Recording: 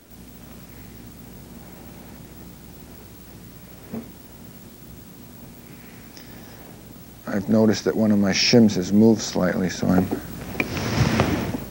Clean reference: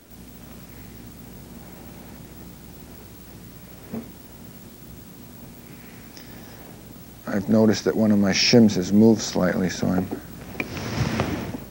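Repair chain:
level correction −4.5 dB, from 0:09.89

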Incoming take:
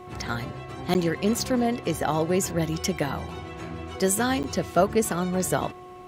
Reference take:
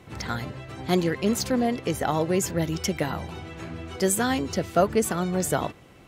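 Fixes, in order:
hum removal 363.6 Hz, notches 3
repair the gap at 0:00.94/0:04.43, 9.5 ms

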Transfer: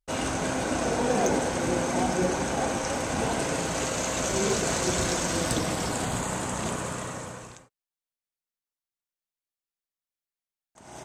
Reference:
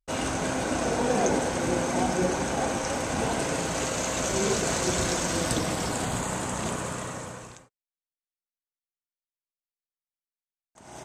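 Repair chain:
clipped peaks rebuilt −15.5 dBFS

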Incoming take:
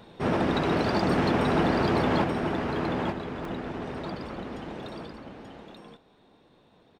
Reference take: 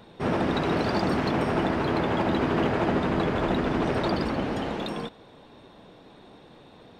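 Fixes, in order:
repair the gap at 0:03.45, 1.9 ms
echo removal 883 ms −4.5 dB
level correction +11 dB, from 0:02.24

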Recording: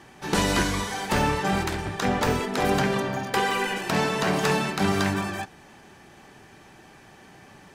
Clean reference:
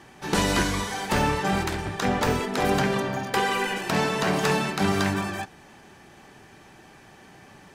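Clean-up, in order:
repair the gap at 0:03.51/0:04.79, 1.1 ms

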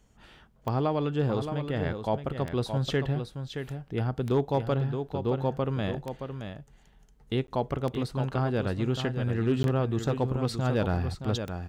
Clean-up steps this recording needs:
clipped peaks rebuilt −16.5 dBFS
click removal
repair the gap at 0:07.47/0:09.63, 12 ms
echo removal 621 ms −8 dB

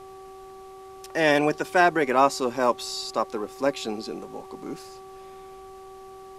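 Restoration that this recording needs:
hum removal 382.8 Hz, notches 3
downward expander −36 dBFS, range −21 dB

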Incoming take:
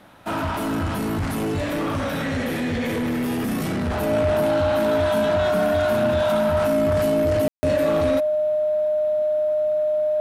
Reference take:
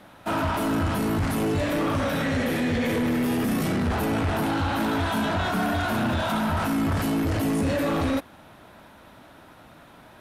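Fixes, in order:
notch filter 610 Hz, Q 30
ambience match 0:07.48–0:07.63

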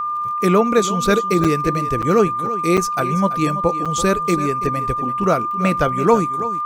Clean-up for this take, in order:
click removal
notch filter 1,200 Hz, Q 30
repair the gap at 0:01.44/0:02.02/0:02.77/0:03.85, 6.4 ms
echo removal 333 ms −14 dB

